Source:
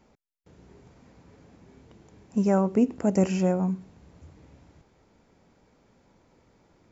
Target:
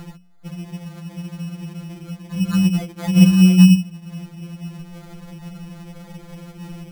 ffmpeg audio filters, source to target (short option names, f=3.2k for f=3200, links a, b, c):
-filter_complex "[0:a]lowshelf=f=270:t=q:w=1.5:g=9,bandreject=f=60:t=h:w=6,bandreject=f=120:t=h:w=6,bandreject=f=180:t=h:w=6,bandreject=f=240:t=h:w=6,asplit=2[a][b];[b]acompressor=mode=upward:threshold=-19dB:ratio=2.5,volume=2.5dB[c];[a][c]amix=inputs=2:normalize=0,acrusher=samples=16:mix=1:aa=0.000001,afftfilt=real='re*2.83*eq(mod(b,8),0)':imag='im*2.83*eq(mod(b,8),0)':win_size=2048:overlap=0.75,volume=-1dB"